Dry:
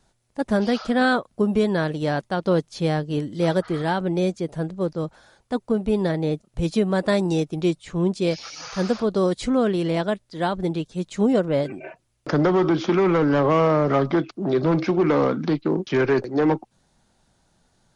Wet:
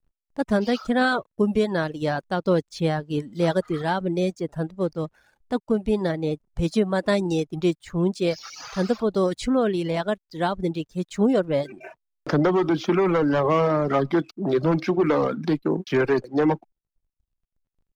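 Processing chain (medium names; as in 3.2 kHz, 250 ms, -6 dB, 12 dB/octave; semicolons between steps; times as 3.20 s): hysteresis with a dead band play -49 dBFS; reverb removal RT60 0.83 s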